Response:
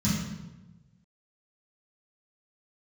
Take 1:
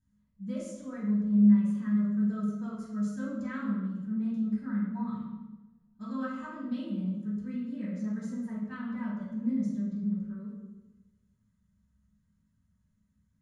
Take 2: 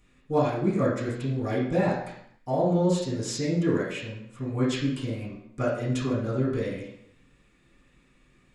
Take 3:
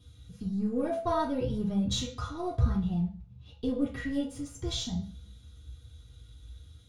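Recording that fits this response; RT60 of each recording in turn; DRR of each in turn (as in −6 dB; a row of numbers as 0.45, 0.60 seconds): 1; 1.1, 0.70, 0.45 seconds; −12.0, −10.5, −7.0 decibels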